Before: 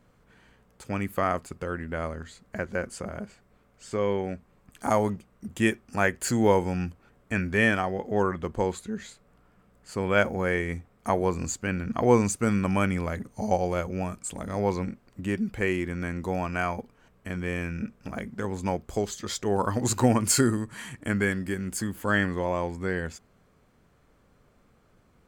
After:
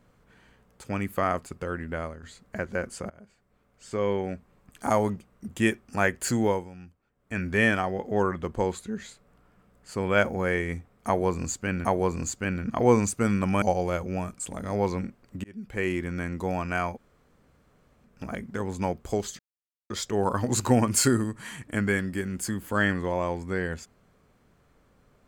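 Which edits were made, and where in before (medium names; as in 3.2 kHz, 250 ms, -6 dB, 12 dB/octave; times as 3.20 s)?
1.94–2.23 s: fade out, to -10 dB
3.10–4.07 s: fade in, from -21 dB
6.34–7.50 s: dip -16 dB, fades 0.35 s
11.07–11.85 s: loop, 2 plays
12.84–13.46 s: delete
15.28–15.76 s: fade in
16.79–17.92 s: room tone, crossfade 0.10 s
19.23 s: insert silence 0.51 s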